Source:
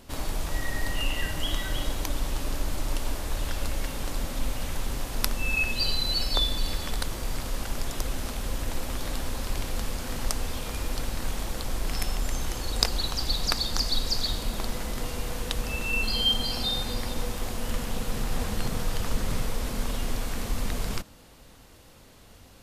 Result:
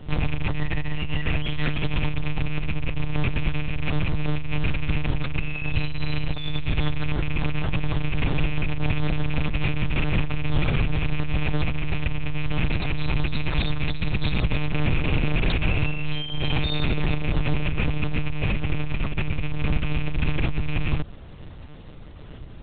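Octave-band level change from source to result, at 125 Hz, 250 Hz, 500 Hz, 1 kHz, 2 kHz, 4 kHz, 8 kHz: +10.5 dB, +8.5 dB, +3.0 dB, +1.5 dB, +5.0 dB, −4.5 dB, below −40 dB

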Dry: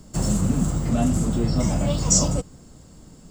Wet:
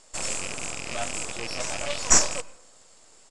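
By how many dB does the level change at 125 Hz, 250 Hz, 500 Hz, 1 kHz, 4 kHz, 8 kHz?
−21.5, −19.0, −5.0, 0.0, +2.0, +0.5 decibels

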